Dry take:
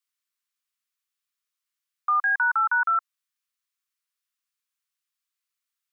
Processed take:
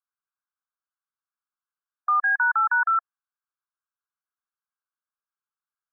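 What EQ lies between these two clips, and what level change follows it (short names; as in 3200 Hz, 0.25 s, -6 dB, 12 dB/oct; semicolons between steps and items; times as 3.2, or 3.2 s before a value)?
brick-wall FIR band-pass 710–1700 Hz; +1.0 dB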